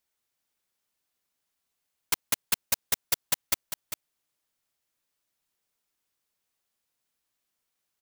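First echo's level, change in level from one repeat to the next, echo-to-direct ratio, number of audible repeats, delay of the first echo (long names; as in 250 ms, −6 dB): −9.0 dB, repeats not evenly spaced, −9.0 dB, 1, 398 ms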